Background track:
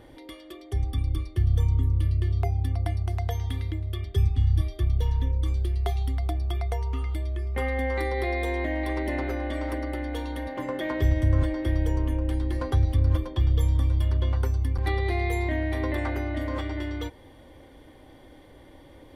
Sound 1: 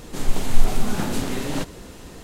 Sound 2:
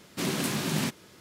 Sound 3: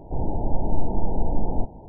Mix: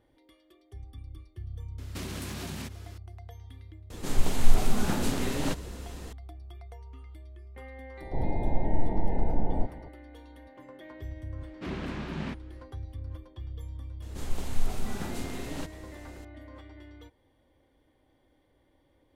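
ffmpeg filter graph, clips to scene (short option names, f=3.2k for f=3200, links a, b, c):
-filter_complex "[2:a]asplit=2[a][b];[1:a]asplit=2[c][d];[0:a]volume=-17.5dB[e];[a]acompressor=threshold=-35dB:ratio=6:attack=3.2:release=140:knee=1:detection=peak[f];[b]lowpass=2.4k[g];[f]atrim=end=1.2,asetpts=PTS-STARTPTS,volume=-0.5dB,afade=t=in:d=0.004:c=hsin,afade=t=out:st=1.196:d=0.004:c=hsin,adelay=1780[h];[c]atrim=end=2.23,asetpts=PTS-STARTPTS,volume=-3.5dB,afade=t=in:d=0.004:c=hsin,afade=t=out:st=2.226:d=0.004:c=hsin,adelay=3900[i];[3:a]atrim=end=1.88,asetpts=PTS-STARTPTS,volume=-3.5dB,afade=t=in:d=0.004:c=hsin,afade=t=out:st=1.876:d=0.004:c=hsin,adelay=8010[j];[g]atrim=end=1.2,asetpts=PTS-STARTPTS,volume=-6dB,afade=t=in:d=0.004:c=hsin,afade=t=out:st=1.196:d=0.004:c=hsin,adelay=11440[k];[d]atrim=end=2.23,asetpts=PTS-STARTPTS,volume=-11dB,afade=t=in:d=0.004:c=hsin,afade=t=out:st=2.226:d=0.004:c=hsin,adelay=14020[l];[e][h][i][j][k][l]amix=inputs=6:normalize=0"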